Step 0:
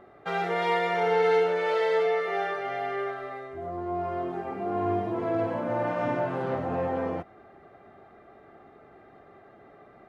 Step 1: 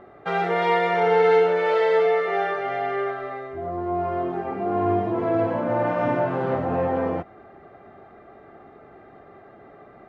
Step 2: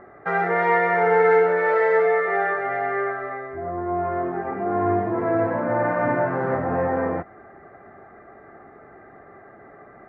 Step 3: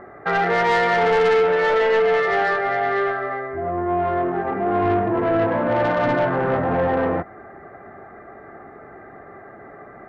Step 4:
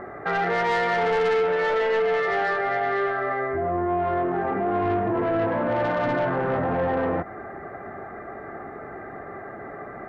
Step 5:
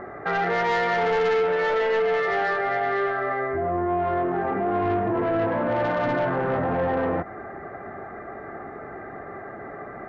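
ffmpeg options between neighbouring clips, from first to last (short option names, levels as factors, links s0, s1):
-af "lowpass=f=3000:p=1,volume=1.88"
-af "highshelf=f=2400:t=q:w=3:g=-8.5"
-af "asoftclip=type=tanh:threshold=0.119,volume=1.78"
-af "alimiter=limit=0.075:level=0:latency=1:release=79,volume=1.58"
-af "aresample=16000,aresample=44100"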